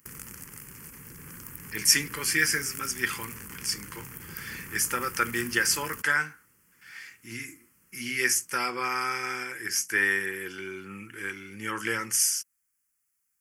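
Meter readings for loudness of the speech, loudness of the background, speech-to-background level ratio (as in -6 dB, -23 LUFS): -27.0 LUFS, -40.5 LUFS, 13.5 dB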